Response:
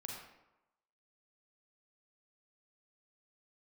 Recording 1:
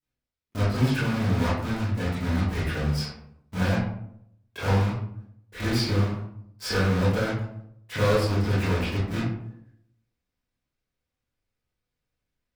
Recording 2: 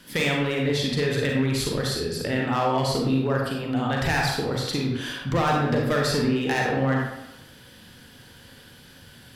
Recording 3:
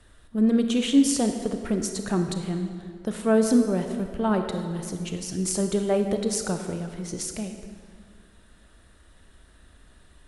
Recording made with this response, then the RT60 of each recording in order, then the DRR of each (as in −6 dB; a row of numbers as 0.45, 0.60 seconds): 2; 0.70, 0.95, 2.0 seconds; −12.5, −1.5, 5.5 decibels